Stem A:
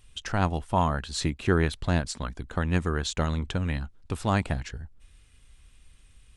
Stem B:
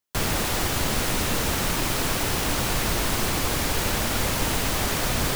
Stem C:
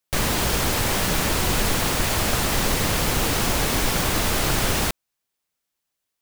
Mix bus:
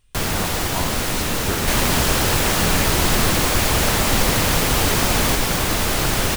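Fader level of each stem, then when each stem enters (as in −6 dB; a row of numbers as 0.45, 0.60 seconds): −5.0, +2.5, +2.0 decibels; 0.00, 0.00, 1.55 seconds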